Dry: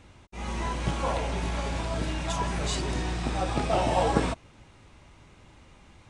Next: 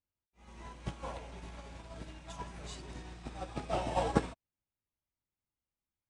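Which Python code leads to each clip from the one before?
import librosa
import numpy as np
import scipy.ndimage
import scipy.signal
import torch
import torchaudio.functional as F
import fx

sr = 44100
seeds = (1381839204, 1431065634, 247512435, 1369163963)

y = fx.upward_expand(x, sr, threshold_db=-47.0, expansion=2.5)
y = y * librosa.db_to_amplitude(-3.0)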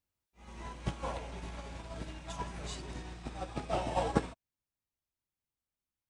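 y = fx.rider(x, sr, range_db=3, speed_s=2.0)
y = y * librosa.db_to_amplitude(1.0)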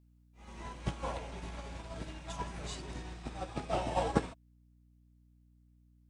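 y = fx.add_hum(x, sr, base_hz=60, snr_db=24)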